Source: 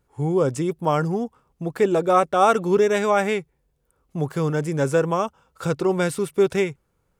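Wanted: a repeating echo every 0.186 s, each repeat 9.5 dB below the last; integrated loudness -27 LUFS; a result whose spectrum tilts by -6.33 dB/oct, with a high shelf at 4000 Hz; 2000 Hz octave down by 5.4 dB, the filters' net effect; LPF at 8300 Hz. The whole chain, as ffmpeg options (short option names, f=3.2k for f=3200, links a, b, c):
-af "lowpass=8.3k,equalizer=f=2k:t=o:g=-9,highshelf=f=4k:g=6,aecho=1:1:186|372|558|744:0.335|0.111|0.0365|0.012,volume=-5dB"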